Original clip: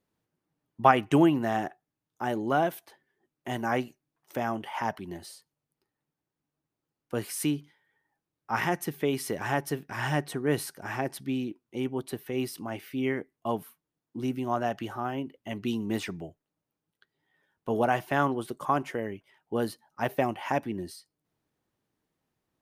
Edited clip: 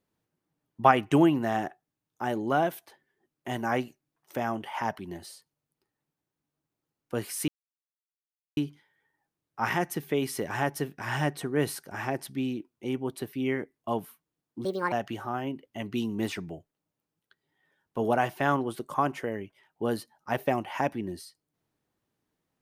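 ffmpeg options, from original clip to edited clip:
-filter_complex "[0:a]asplit=5[s0][s1][s2][s3][s4];[s0]atrim=end=7.48,asetpts=PTS-STARTPTS,afade=t=out:st=7.476:d=0.004:c=hsin,apad=pad_dur=1.09[s5];[s1]atrim=start=7.48:end=12.242,asetpts=PTS-STARTPTS,afade=t=in:d=0.004:c=hsin[s6];[s2]atrim=start=12.908:end=14.234[s7];[s3]atrim=start=14.23:end=14.63,asetpts=PTS-STARTPTS,asetrate=65268,aresample=44100[s8];[s4]atrim=start=14.626[s9];[s5][s6]concat=n=2:v=0:a=1[s10];[s10][s7]acrossfade=d=0.004:c1=hsin:c2=hsin[s11];[s11][s8]acrossfade=d=0.004:c1=hsin:c2=hsin[s12];[s12][s9]acrossfade=d=0.004:c1=hsin:c2=hsin"

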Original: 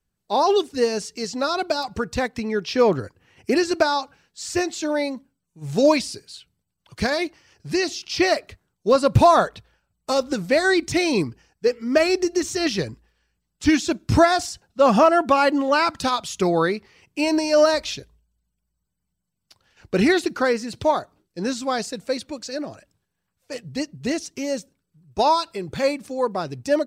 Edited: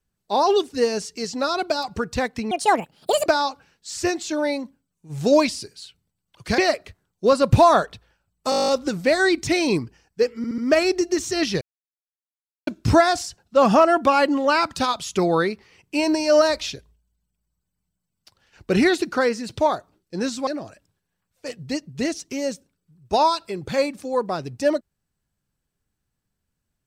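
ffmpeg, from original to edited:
-filter_complex "[0:a]asplit=19[s0][s1][s2][s3][s4][s5][s6][s7][s8][s9][s10][s11][s12][s13][s14][s15][s16][s17][s18];[s0]atrim=end=2.514[s19];[s1]atrim=start=2.51:end=3.78,asetpts=PTS-STARTPTS,asetrate=74529,aresample=44100,atrim=end_sample=33140,asetpts=PTS-STARTPTS[s20];[s2]atrim=start=3.776:end=7.102[s21];[s3]atrim=start=8.208:end=10.152[s22];[s4]atrim=start=10.128:end=10.152[s23];[s5]atrim=start=10.128:end=10.152[s24];[s6]atrim=start=10.128:end=10.152[s25];[s7]atrim=start=10.128:end=10.152[s26];[s8]atrim=start=10.128:end=10.152[s27];[s9]atrim=start=10.128:end=10.152[s28];[s10]atrim=start=10.128:end=10.152[s29];[s11]atrim=start=10.128:end=10.152[s30];[s12]atrim=start=10.128:end=11.892[s31];[s13]atrim=start=11.818:end=11.892[s32];[s14]atrim=start=11.818:end=11.892[s33];[s15]atrim=start=11.818:end=12.85,asetpts=PTS-STARTPTS,afade=t=out:st=1.028:d=0.004:c=hsin[s34];[s16]atrim=start=12.85:end=13.91,asetpts=PTS-STARTPTS,volume=0[s35];[s17]atrim=start=13.91:end=21.712,asetpts=PTS-STARTPTS,afade=t=in:d=0.004:c=hsin[s36];[s18]atrim=start=22.528[s37];[s19][s20]acrossfade=d=0.004:c1=hsin:c2=hsin[s38];[s38][s21]acrossfade=d=0.004:c1=hsin:c2=hsin[s39];[s39][s22]acrossfade=d=0.004:c1=hsin:c2=hsin[s40];[s40][s23]acrossfade=d=0.004:c1=hsin:c2=hsin[s41];[s41][s24]acrossfade=d=0.004:c1=hsin:c2=hsin[s42];[s42][s25]acrossfade=d=0.004:c1=hsin:c2=hsin[s43];[s43][s26]acrossfade=d=0.004:c1=hsin:c2=hsin[s44];[s44][s27]acrossfade=d=0.004:c1=hsin:c2=hsin[s45];[s45][s28]acrossfade=d=0.004:c1=hsin:c2=hsin[s46];[s46][s29]acrossfade=d=0.004:c1=hsin:c2=hsin[s47];[s47][s30]acrossfade=d=0.004:c1=hsin:c2=hsin[s48];[s48][s31]acrossfade=d=0.004:c1=hsin:c2=hsin[s49];[s49][s32]acrossfade=d=0.004:c1=hsin:c2=hsin[s50];[s50][s33]acrossfade=d=0.004:c1=hsin:c2=hsin[s51];[s34][s35][s36]concat=n=3:v=0:a=1[s52];[s51][s52]acrossfade=d=0.004:c1=hsin:c2=hsin[s53];[s53][s37]acrossfade=d=0.004:c1=hsin:c2=hsin"

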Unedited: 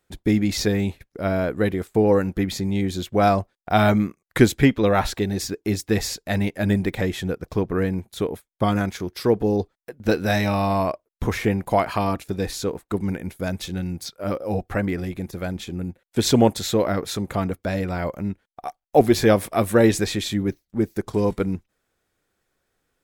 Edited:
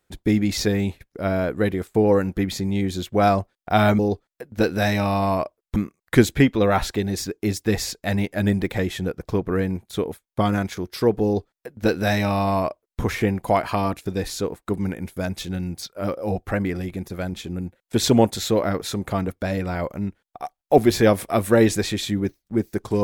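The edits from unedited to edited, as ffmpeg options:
-filter_complex "[0:a]asplit=3[s0][s1][s2];[s0]atrim=end=3.992[s3];[s1]atrim=start=9.468:end=11.242[s4];[s2]atrim=start=3.988[s5];[s3][s4]acrossfade=d=0.004:c1=hsin:c2=hsin[s6];[s6][s5]acrossfade=d=0.004:c1=hsin:c2=hsin"

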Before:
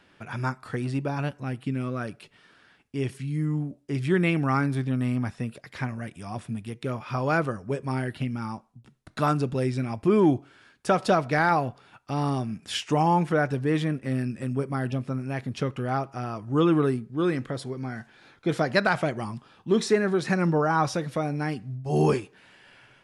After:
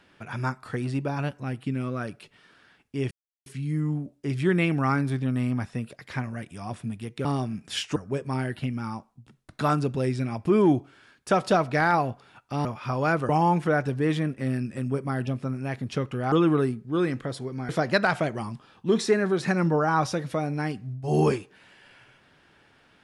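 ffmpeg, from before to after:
-filter_complex "[0:a]asplit=8[s0][s1][s2][s3][s4][s5][s6][s7];[s0]atrim=end=3.11,asetpts=PTS-STARTPTS,afade=t=out:st=3.106:d=0.004:c=hsin,apad=pad_dur=0.35[s8];[s1]atrim=start=3.11:end=6.902,asetpts=PTS-STARTPTS,afade=t=in:d=0.004:c=hsin[s9];[s2]atrim=start=12.228:end=12.942[s10];[s3]atrim=start=7.538:end=12.232[s11];[s4]atrim=start=6.898:end=7.542[s12];[s5]atrim=start=12.938:end=15.972[s13];[s6]atrim=start=16.568:end=17.942[s14];[s7]atrim=start=18.508[s15];[s8][s9]concat=n=2:v=0:a=1[s16];[s16][s10]acrossfade=d=0.004:c1=hsin:c2=hsin[s17];[s17][s11]acrossfade=d=0.004:c1=hsin:c2=hsin[s18];[s18][s12]acrossfade=d=0.004:c1=hsin:c2=hsin[s19];[s19][s13]acrossfade=d=0.004:c1=hsin:c2=hsin[s20];[s20][s14]acrossfade=d=0.004:c1=hsin:c2=hsin[s21];[s21][s15]acrossfade=d=0.004:c1=hsin:c2=hsin"

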